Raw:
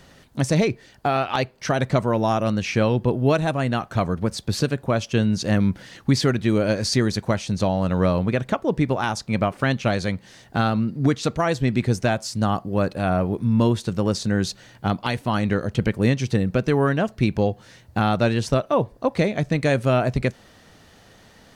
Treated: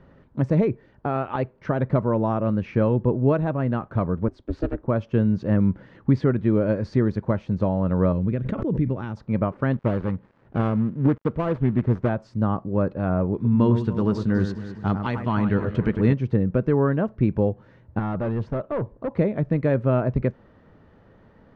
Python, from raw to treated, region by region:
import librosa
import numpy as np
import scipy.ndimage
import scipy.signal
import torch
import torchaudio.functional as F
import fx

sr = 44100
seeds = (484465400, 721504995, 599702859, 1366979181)

y = fx.chain(x, sr, fx.ring_mod(carrier_hz=180.0),
    fx.band_widen(depth_pct=40), at=(4.28, 4.88))
y = fx.chain(y, sr, fx.peak_eq(hz=880.0, db=-12.5, octaves=2.0),
    fx.pre_swell(db_per_s=34.0), at=(8.12, 9.17))
y = fx.chain(y, sr, fx.dead_time(dead_ms=0.22),
    fx.resample_bad(factor=3, down='none', up='hold'),
    fx.doppler_dist(depth_ms=0.27), at=(9.73, 12.09))
y = fx.chain(y, sr, fx.high_shelf(hz=2600.0, db=12.0),
    fx.notch(hz=540.0, q=7.2),
    fx.echo_alternate(ms=101, hz=2200.0, feedback_pct=71, wet_db=-8.0), at=(13.34, 16.13))
y = fx.chain(y, sr, fx.overload_stage(gain_db=21.0),
    fx.air_absorb(metres=54.0), at=(17.99, 19.12))
y = scipy.signal.sosfilt(scipy.signal.butter(2, 1100.0, 'lowpass', fs=sr, output='sos'), y)
y = fx.peak_eq(y, sr, hz=730.0, db=-8.5, octaves=0.26)